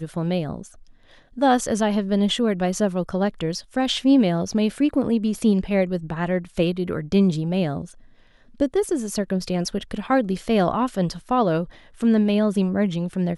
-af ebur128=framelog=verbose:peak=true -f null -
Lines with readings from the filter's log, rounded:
Integrated loudness:
  I:         -22.3 LUFS
  Threshold: -32.7 LUFS
Loudness range:
  LRA:         2.9 LU
  Threshold: -42.7 LUFS
  LRA low:   -24.4 LUFS
  LRA high:  -21.5 LUFS
True peak:
  Peak:       -7.3 dBFS